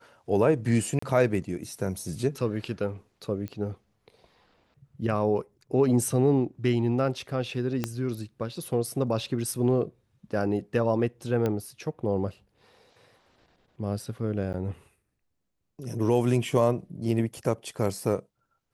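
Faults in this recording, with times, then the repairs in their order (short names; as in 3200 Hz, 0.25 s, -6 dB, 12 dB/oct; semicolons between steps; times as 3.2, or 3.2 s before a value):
0.99–1.02 gap 34 ms
3.48 pop -23 dBFS
7.84 pop -13 dBFS
11.46 pop -16 dBFS
14.53–14.54 gap 9.5 ms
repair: de-click; interpolate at 0.99, 34 ms; interpolate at 14.53, 9.5 ms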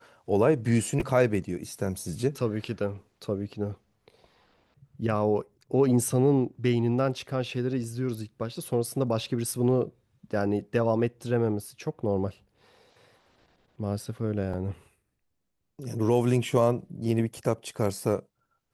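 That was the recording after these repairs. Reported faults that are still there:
7.84 pop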